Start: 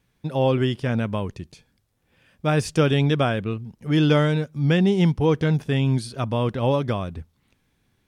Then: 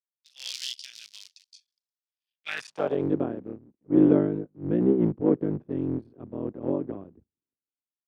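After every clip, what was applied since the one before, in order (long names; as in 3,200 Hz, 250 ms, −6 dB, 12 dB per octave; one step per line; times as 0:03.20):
sub-harmonics by changed cycles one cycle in 3, muted
band-pass filter sweep 4,900 Hz → 320 Hz, 0:02.23–0:03.08
multiband upward and downward expander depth 100%
level +2 dB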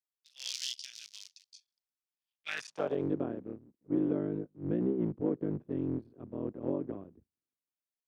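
dynamic equaliser 6,200 Hz, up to +5 dB, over −57 dBFS, Q 2.4
downward compressor 6 to 1, threshold −22 dBFS, peak gain reduction 8.5 dB
parametric band 810 Hz −2 dB 0.24 octaves
level −4.5 dB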